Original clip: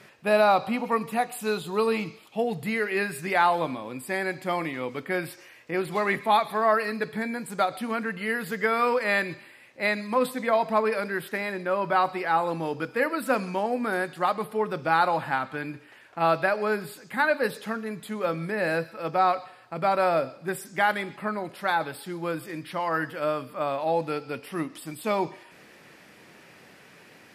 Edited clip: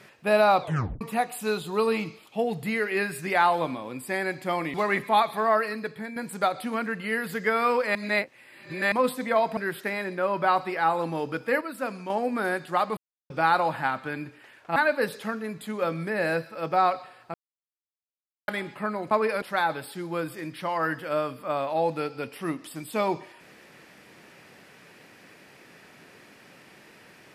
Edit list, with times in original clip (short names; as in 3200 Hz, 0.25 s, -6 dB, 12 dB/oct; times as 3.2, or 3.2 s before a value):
0.61 tape stop 0.40 s
4.74–5.91 cut
6.61–7.33 fade out, to -8 dB
9.12–10.09 reverse
10.74–11.05 move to 21.53
13.09–13.58 gain -6.5 dB
14.45–14.78 mute
16.24–17.18 cut
19.76–20.9 mute